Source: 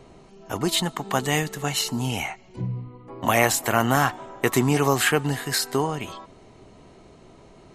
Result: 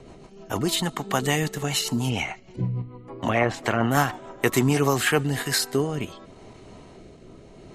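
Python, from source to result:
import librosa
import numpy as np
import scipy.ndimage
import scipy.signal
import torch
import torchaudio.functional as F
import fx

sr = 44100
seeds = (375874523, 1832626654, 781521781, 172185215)

p1 = fx.level_steps(x, sr, step_db=17)
p2 = x + F.gain(torch.from_numpy(p1), 0.0).numpy()
p3 = fx.env_lowpass_down(p2, sr, base_hz=1900.0, full_db=-13.5, at=(2.09, 3.9), fade=0.02)
y = fx.rotary_switch(p3, sr, hz=6.7, then_hz=0.75, switch_at_s=4.67)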